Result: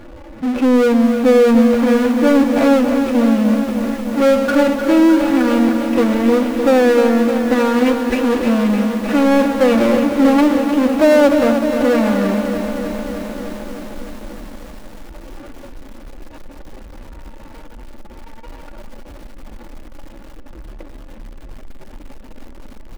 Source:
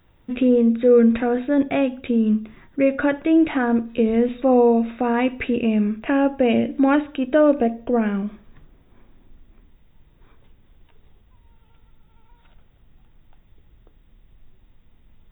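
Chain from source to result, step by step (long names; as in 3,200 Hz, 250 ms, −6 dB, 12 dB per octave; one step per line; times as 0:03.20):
running median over 41 samples
bass and treble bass −12 dB, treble −13 dB
comb filter 3.5 ms, depth 83%
phase-vocoder stretch with locked phases 1.5×
power curve on the samples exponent 0.5
on a send: delay with a high-pass on its return 596 ms, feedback 66%, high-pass 2,500 Hz, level −20.5 dB
on the sum: feedback echo at a low word length 305 ms, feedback 80%, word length 6 bits, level −8 dB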